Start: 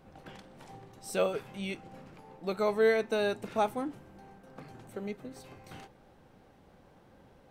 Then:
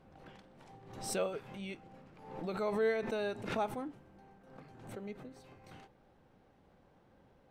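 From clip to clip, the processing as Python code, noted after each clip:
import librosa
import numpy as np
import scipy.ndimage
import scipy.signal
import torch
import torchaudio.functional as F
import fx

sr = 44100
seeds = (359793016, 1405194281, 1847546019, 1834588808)

y = fx.high_shelf(x, sr, hz=6800.0, db=-9.0)
y = fx.pre_swell(y, sr, db_per_s=67.0)
y = F.gain(torch.from_numpy(y), -6.5).numpy()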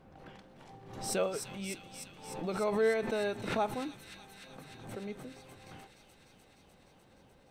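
y = fx.echo_wet_highpass(x, sr, ms=300, feedback_pct=78, hz=3200.0, wet_db=-5)
y = F.gain(torch.from_numpy(y), 3.0).numpy()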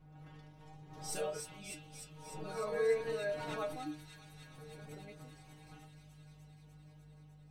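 y = fx.add_hum(x, sr, base_hz=50, snr_db=14)
y = fx.echo_pitch(y, sr, ms=95, semitones=1, count=2, db_per_echo=-6.0)
y = fx.stiff_resonator(y, sr, f0_hz=150.0, decay_s=0.29, stiffness=0.002)
y = F.gain(torch.from_numpy(y), 4.5).numpy()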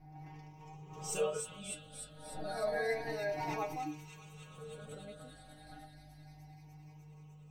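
y = fx.spec_ripple(x, sr, per_octave=0.75, drift_hz=0.31, depth_db=13)
y = fx.peak_eq(y, sr, hz=720.0, db=7.0, octaves=0.35)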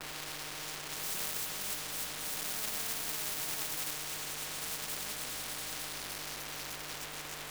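y = fx.quant_companded(x, sr, bits=4)
y = fx.spectral_comp(y, sr, ratio=10.0)
y = F.gain(torch.from_numpy(y), 7.5).numpy()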